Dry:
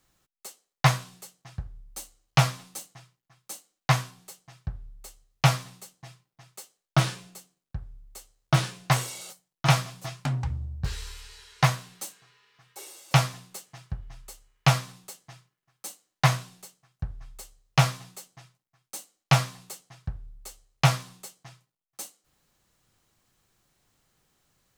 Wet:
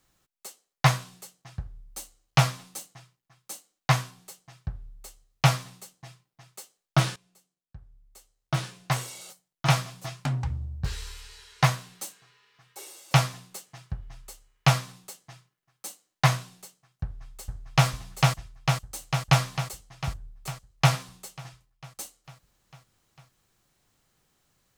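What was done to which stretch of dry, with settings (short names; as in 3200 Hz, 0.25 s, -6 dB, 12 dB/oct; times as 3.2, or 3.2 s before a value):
7.16–10.17 fade in, from -19.5 dB
17.03–17.88 echo throw 0.45 s, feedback 70%, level -1 dB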